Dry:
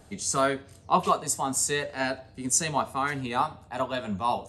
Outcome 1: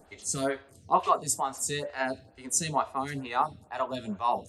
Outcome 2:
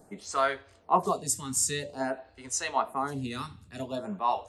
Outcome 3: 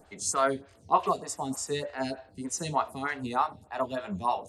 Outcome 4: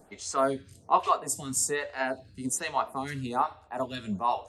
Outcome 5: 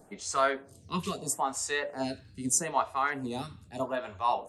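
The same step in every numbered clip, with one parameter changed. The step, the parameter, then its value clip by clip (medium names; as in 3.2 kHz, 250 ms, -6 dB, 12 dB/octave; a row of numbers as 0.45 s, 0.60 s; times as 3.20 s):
lamp-driven phase shifter, rate: 2.2 Hz, 0.5 Hz, 3.3 Hz, 1.2 Hz, 0.78 Hz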